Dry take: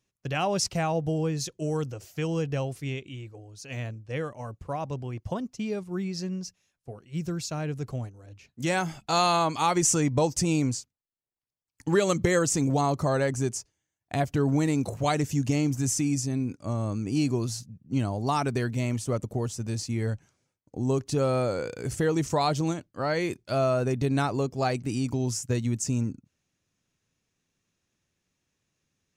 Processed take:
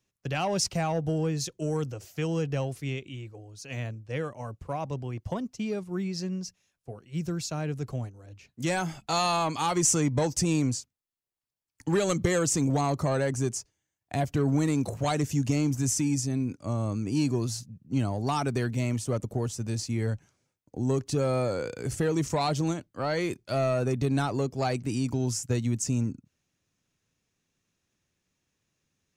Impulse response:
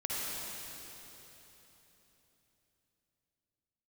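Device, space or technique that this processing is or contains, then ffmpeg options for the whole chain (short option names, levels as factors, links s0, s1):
one-band saturation: -filter_complex "[0:a]acrossover=split=230|3600[s0][s1][s2];[s1]asoftclip=type=tanh:threshold=0.0841[s3];[s0][s3][s2]amix=inputs=3:normalize=0"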